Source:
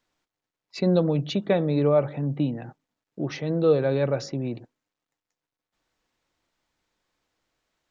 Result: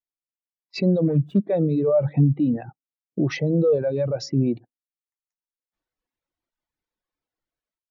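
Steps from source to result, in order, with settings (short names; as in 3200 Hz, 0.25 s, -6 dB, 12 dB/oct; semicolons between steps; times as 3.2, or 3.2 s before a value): 1.06–1.48 median filter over 41 samples; AGC gain up to 13.5 dB; limiter -15 dBFS, peak gain reduction 13.5 dB; reverb removal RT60 1 s; spectral expander 1.5:1; gain +6 dB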